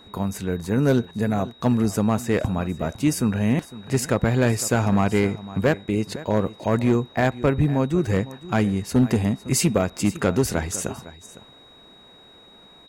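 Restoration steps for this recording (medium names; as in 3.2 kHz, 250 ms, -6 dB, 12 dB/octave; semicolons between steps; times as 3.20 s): clip repair -11.5 dBFS; band-stop 3.8 kHz, Q 30; inverse comb 506 ms -17.5 dB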